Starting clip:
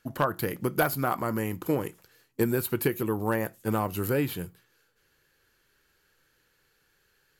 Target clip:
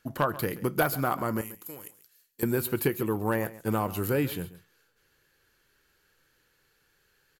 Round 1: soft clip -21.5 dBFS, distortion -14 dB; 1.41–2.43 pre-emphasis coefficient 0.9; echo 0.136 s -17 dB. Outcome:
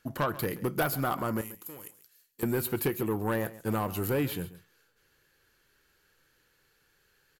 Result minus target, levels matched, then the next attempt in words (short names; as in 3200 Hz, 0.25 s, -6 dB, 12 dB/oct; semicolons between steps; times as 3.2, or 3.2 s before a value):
soft clip: distortion +17 dB
soft clip -10.5 dBFS, distortion -31 dB; 1.41–2.43 pre-emphasis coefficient 0.9; echo 0.136 s -17 dB